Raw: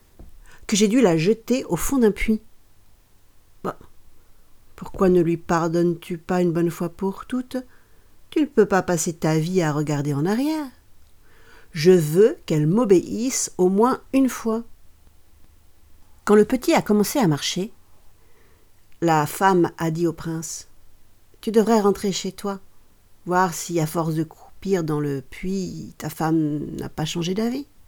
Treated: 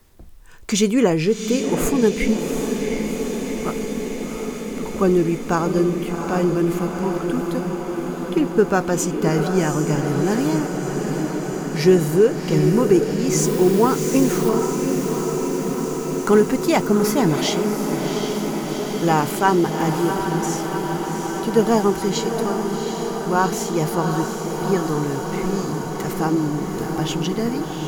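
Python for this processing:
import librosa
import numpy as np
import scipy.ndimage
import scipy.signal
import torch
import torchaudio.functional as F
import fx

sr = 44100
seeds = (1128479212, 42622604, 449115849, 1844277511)

y = fx.quant_dither(x, sr, seeds[0], bits=6, dither='triangular', at=(13.38, 14.49))
y = fx.echo_diffused(y, sr, ms=746, feedback_pct=79, wet_db=-6.0)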